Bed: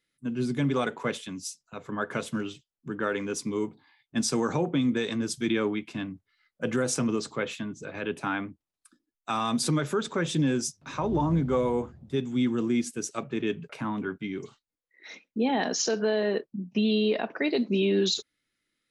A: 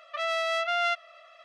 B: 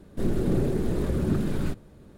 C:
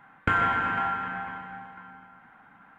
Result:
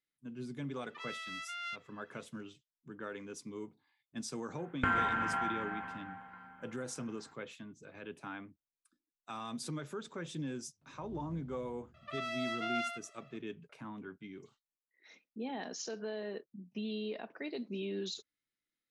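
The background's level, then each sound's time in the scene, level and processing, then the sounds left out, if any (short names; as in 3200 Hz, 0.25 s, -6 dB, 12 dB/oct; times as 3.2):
bed -14.5 dB
0.81 add A -12.5 dB + HPF 1300 Hz 24 dB/oct
4.56 add C -7 dB
11.94 add A -11 dB + outdoor echo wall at 16 m, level -6 dB
not used: B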